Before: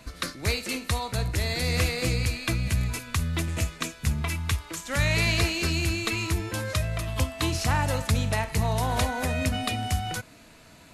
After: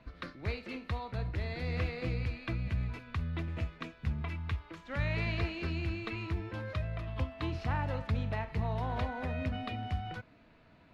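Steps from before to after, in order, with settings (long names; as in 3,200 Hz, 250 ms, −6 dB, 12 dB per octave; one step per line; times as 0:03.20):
high-frequency loss of the air 340 metres
level −7.5 dB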